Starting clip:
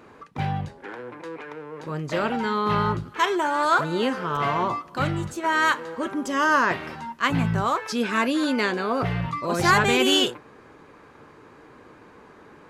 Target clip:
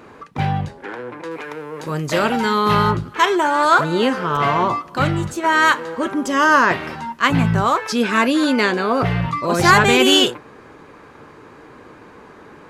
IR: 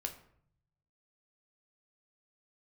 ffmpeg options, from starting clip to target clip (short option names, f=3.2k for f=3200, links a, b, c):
-filter_complex "[0:a]asettb=1/sr,asplit=3[a][b][c];[a]atrim=end=1.314[d];[b]atrim=start=1.31:end=2.91,asetpts=PTS-STARTPTS,afade=t=in:d=0.004:c=qsin,afade=t=out:st=1.596:d=0.004:c=qsin,aemphasis=mode=production:type=50kf[e];[c]atrim=start=2.906[f];[d][e]acrossfade=d=0.004:c1=hsin:c2=qsin[g];[g][f]acrossfade=d=0.004:c1=qsin:c2=hsin,volume=6.5dB"